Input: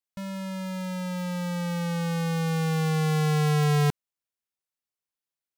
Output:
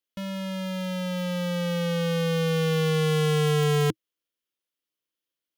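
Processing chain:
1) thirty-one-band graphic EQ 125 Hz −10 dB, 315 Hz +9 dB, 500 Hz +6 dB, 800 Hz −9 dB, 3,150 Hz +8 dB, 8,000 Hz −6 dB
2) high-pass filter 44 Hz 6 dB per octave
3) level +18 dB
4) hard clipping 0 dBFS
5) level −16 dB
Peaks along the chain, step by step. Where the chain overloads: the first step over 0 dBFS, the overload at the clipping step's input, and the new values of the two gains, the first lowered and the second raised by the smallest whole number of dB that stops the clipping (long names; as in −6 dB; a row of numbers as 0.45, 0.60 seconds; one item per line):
−15.5, −14.5, +3.5, 0.0, −16.0 dBFS
step 3, 3.5 dB
step 3 +14 dB, step 5 −12 dB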